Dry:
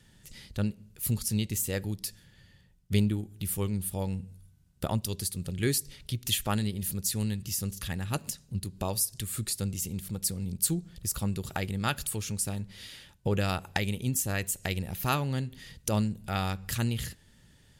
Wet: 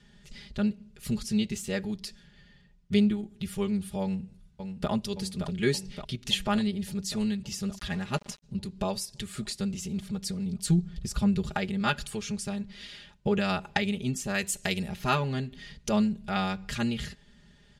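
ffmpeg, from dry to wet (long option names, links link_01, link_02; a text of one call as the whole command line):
ffmpeg -i in.wav -filter_complex "[0:a]asplit=2[link_01][link_02];[link_02]afade=type=in:start_time=4.02:duration=0.01,afade=type=out:start_time=4.9:duration=0.01,aecho=0:1:570|1140|1710|2280|2850|3420|3990|4560|5130|5700|6270:0.446684|0.312679|0.218875|0.153212|0.107249|0.0750741|0.0525519|0.0367863|0.0257504|0.0180253|0.0126177[link_03];[link_01][link_03]amix=inputs=2:normalize=0,asplit=3[link_04][link_05][link_06];[link_04]afade=type=out:start_time=7.77:duration=0.02[link_07];[link_05]aeval=exprs='val(0)*gte(abs(val(0)),0.00794)':channel_layout=same,afade=type=in:start_time=7.77:duration=0.02,afade=type=out:start_time=8.42:duration=0.02[link_08];[link_06]afade=type=in:start_time=8.42:duration=0.02[link_09];[link_07][link_08][link_09]amix=inputs=3:normalize=0,asettb=1/sr,asplit=3[link_10][link_11][link_12];[link_10]atrim=end=10.674[link_13];[link_11]atrim=start=10.67:end=11.54,asetpts=PTS-STARTPTS,afade=type=in:duration=0.004:curve=qsin,afade=type=out:start_time=0.866:duration=0.004:curve=qsin,lowshelf=frequency=180:gain=8.5[link_14];[link_12]atrim=start=11.536[link_15];[link_13][link_14]acrossfade=duration=0.004:curve1=hsin:curve2=qsin[link_16];[link_16][link_15]acrossfade=duration=0.004:curve1=qsin:curve2=hsin,asettb=1/sr,asplit=3[link_17][link_18][link_19];[link_17]atrim=end=14.344[link_20];[link_18]atrim=start=14.34:end=14.89,asetpts=PTS-STARTPTS,afade=type=in:duration=0.004:curve=qsin,afade=type=out:start_time=0.546:duration=0.004:curve=qsin,aemphasis=mode=production:type=50kf[link_21];[link_19]atrim=start=14.886[link_22];[link_20][link_21]acrossfade=duration=0.004:curve1=hsin:curve2=qsin[link_23];[link_23][link_22]acrossfade=duration=0.004:curve1=qsin:curve2=hsin,lowpass=5100,aecho=1:1:4.9:0.9" out.wav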